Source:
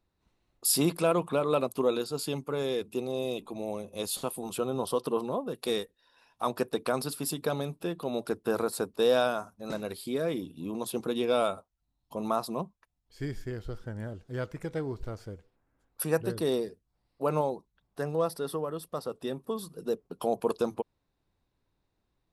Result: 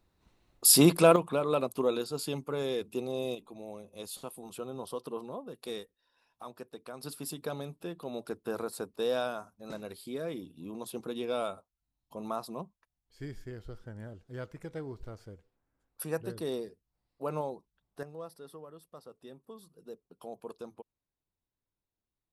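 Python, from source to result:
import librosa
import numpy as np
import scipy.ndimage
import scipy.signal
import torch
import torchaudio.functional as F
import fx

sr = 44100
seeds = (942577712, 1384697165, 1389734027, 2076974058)

y = fx.gain(x, sr, db=fx.steps((0.0, 5.5), (1.16, -2.0), (3.35, -9.0), (6.43, -15.5), (7.03, -6.5), (18.03, -15.0)))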